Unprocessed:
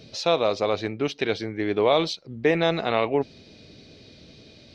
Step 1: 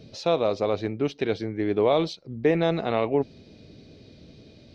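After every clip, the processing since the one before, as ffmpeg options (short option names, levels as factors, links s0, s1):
-af "tiltshelf=f=790:g=4.5,volume=0.75"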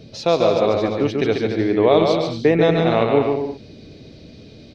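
-af "aecho=1:1:140|231|290.2|328.6|353.6:0.631|0.398|0.251|0.158|0.1,volume=1.88"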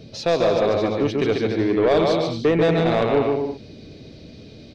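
-af "asoftclip=type=tanh:threshold=0.282"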